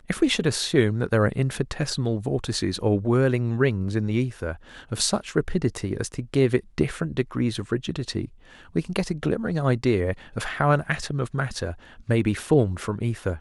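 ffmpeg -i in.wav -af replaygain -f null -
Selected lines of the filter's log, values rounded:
track_gain = +4.8 dB
track_peak = 0.374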